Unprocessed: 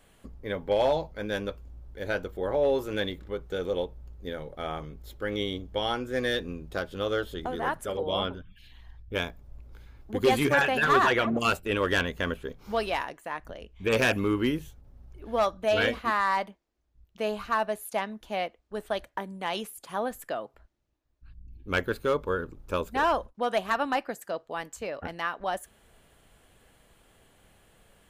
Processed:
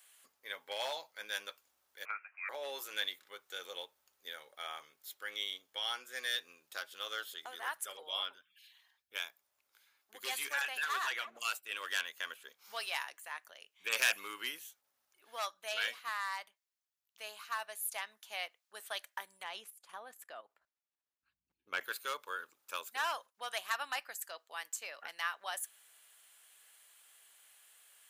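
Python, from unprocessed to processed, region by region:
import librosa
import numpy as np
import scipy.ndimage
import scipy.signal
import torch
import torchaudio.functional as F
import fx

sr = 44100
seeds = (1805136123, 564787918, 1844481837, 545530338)

y = fx.chain(x, sr, fx.highpass(hz=1300.0, slope=12),
    fx.freq_invert(carrier_hz=2900),
    fx.band_squash(depth_pct=100), at=(2.05, 2.49))
y = fx.chain(y, sr, fx.highpass(hz=50.0, slope=24),
    fx.tilt_eq(slope=-3.5),
    fx.level_steps(step_db=11), at=(19.43, 21.81))
y = scipy.signal.sosfilt(scipy.signal.butter(2, 1300.0, 'highpass', fs=sr, output='sos'), y)
y = fx.high_shelf(y, sr, hz=5000.0, db=12.0)
y = fx.rider(y, sr, range_db=4, speed_s=2.0)
y = y * 10.0 ** (-7.5 / 20.0)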